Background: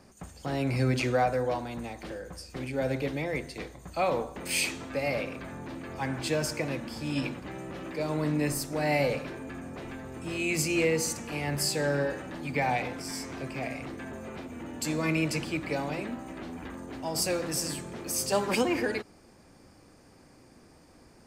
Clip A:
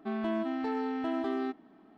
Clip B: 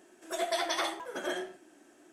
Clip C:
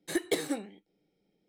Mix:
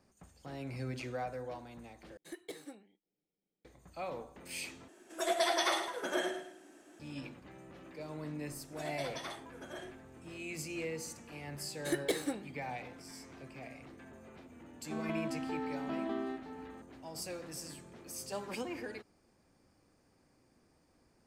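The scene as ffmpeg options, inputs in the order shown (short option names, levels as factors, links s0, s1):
-filter_complex "[3:a]asplit=2[s0][s1];[2:a]asplit=2[s2][s3];[0:a]volume=0.211[s4];[s2]aecho=1:1:105|210|315|420:0.335|0.114|0.0387|0.0132[s5];[1:a]aecho=1:1:966:0.335[s6];[s4]asplit=3[s7][s8][s9];[s7]atrim=end=2.174[s10];[s0]atrim=end=1.48,asetpts=PTS-STARTPTS,volume=0.15[s11];[s8]atrim=start=3.646:end=4.884[s12];[s5]atrim=end=2.12[s13];[s9]atrim=start=6.996[s14];[s3]atrim=end=2.12,asetpts=PTS-STARTPTS,volume=0.251,afade=t=in:d=0.004:c=hsin,afade=t=out:st=2.116:d=0.004:c=hsin,adelay=8460[s15];[s1]atrim=end=1.48,asetpts=PTS-STARTPTS,volume=0.668,afade=t=in:d=0.004:c=hsin,afade=t=out:st=1.476:d=0.004:c=hsin,adelay=11770[s16];[s6]atrim=end=1.97,asetpts=PTS-STARTPTS,volume=0.501,afade=t=in:d=0.004:c=hsin,afade=t=out:st=1.966:d=0.004:c=hsin,adelay=14850[s17];[s10][s11]acrossfade=d=0.004:c1=hsin:c2=hsin[s18];[s18][s12]acrossfade=d=0.004:c1=hsin:c2=hsin[s19];[s19][s13]acrossfade=d=0.004:c1=hsin:c2=hsin[s20];[s20][s14]acrossfade=d=0.004:c1=hsin:c2=hsin[s21];[s21][s15][s16][s17]amix=inputs=4:normalize=0"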